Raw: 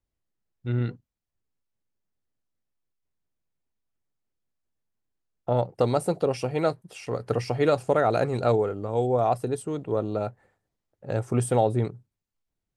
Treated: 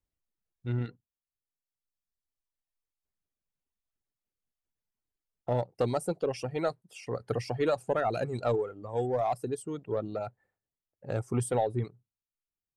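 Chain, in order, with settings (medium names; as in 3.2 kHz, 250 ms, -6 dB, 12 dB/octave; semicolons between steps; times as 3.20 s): in parallel at -5.5 dB: overload inside the chain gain 21 dB; on the sum: reverb removal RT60 1.8 s; trim -7.5 dB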